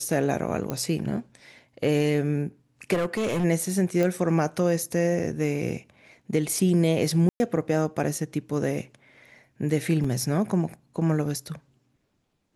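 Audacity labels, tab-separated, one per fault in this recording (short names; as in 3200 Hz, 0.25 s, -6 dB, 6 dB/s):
0.700000	0.700000	pop -14 dBFS
2.930000	3.450000	clipped -22 dBFS
4.030000	4.030000	pop -14 dBFS
7.290000	7.400000	gap 0.11 s
10.040000	10.040000	gap 4.6 ms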